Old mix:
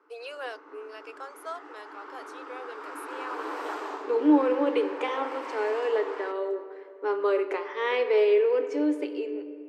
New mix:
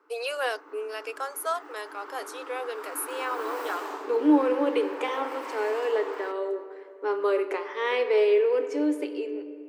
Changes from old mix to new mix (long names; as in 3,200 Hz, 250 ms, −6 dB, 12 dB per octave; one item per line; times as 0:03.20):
first voice +8.0 dB
master: remove high-frequency loss of the air 58 metres